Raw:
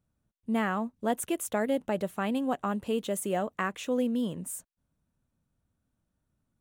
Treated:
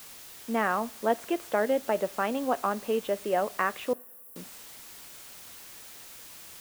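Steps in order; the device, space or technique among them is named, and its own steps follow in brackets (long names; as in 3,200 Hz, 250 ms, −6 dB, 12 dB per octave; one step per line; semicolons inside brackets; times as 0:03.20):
wax cylinder (band-pass filter 360–2,400 Hz; tape wow and flutter; white noise bed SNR 16 dB)
0:03.93–0:04.36: inverse Chebyshev high-pass filter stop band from 2,900 Hz, stop band 70 dB
coupled-rooms reverb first 0.31 s, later 2.2 s, from −20 dB, DRR 17 dB
level +4.5 dB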